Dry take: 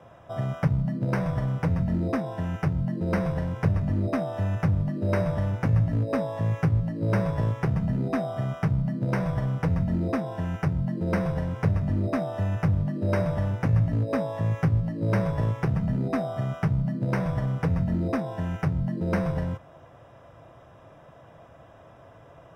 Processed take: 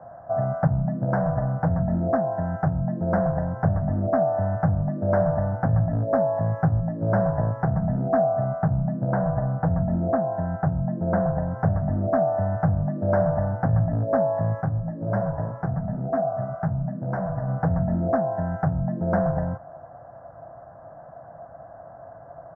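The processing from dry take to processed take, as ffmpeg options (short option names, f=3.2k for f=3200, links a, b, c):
-filter_complex "[0:a]asettb=1/sr,asplit=3[a][b][c];[a]atrim=end=8.244[d];[b]atrim=start=8.24:end=11.51,asetpts=PTS-STARTPTS,afade=t=in:d=0.004:c=qsin,afade=t=out:st=3.266:d=0.004:c=qsin,highshelf=f=3.4k:g=-11[e];[c]atrim=start=11.506[f];[d][e]acrossfade=d=0.004:c1=hsin:c2=qsin[g];[g][f]acrossfade=d=0.004:c1=qsin:c2=hsin,asplit=3[h][i][j];[h]afade=t=out:st=14.6:d=0.02[k];[i]flanger=delay=6.5:depth=8.2:regen=-36:speed=1.9:shape=triangular,afade=t=in:st=14.6:d=0.02,afade=t=out:st=17.47:d=0.02[l];[j]afade=t=in:st=17.47:d=0.02[m];[k][l][m]amix=inputs=3:normalize=0,firequalizer=gain_entry='entry(110,0);entry(160,3);entry(410,-5);entry(700,14);entry(990,1);entry(1600,3);entry(2400,-27);entry(3600,-28);entry(5200,-18);entry(7400,-21)':delay=0.05:min_phase=1"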